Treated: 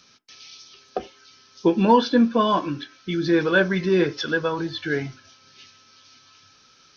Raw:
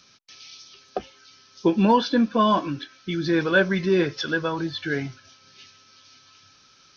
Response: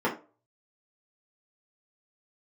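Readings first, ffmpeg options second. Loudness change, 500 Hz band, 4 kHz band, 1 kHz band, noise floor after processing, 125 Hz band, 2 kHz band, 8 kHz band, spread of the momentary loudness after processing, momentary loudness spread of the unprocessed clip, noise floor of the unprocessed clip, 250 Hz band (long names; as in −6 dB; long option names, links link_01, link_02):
+1.0 dB, +2.0 dB, +0.5 dB, +1.0 dB, −56 dBFS, 0.0 dB, +0.5 dB, can't be measured, 17 LU, 16 LU, −56 dBFS, +1.0 dB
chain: -filter_complex "[0:a]asplit=2[link_01][link_02];[1:a]atrim=start_sample=2205,atrim=end_sample=4410[link_03];[link_02][link_03]afir=irnorm=-1:irlink=0,volume=-24dB[link_04];[link_01][link_04]amix=inputs=2:normalize=0"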